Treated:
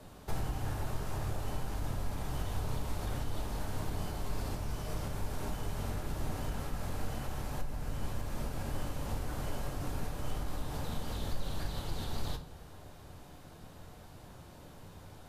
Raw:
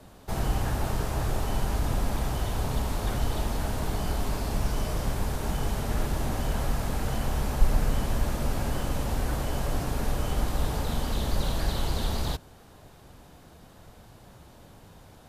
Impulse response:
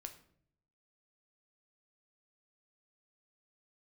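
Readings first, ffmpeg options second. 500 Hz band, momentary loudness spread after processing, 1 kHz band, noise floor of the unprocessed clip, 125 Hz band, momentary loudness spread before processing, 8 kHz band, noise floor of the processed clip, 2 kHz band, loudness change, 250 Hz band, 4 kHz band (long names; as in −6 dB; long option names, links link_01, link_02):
−9.0 dB, 14 LU, −9.0 dB, −52 dBFS, −8.0 dB, 2 LU, −9.0 dB, −52 dBFS, −9.0 dB, −9.0 dB, −9.0 dB, −9.0 dB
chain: -filter_complex "[0:a]acompressor=threshold=-32dB:ratio=5[link_01];[1:a]atrim=start_sample=2205[link_02];[link_01][link_02]afir=irnorm=-1:irlink=0,volume=3.5dB"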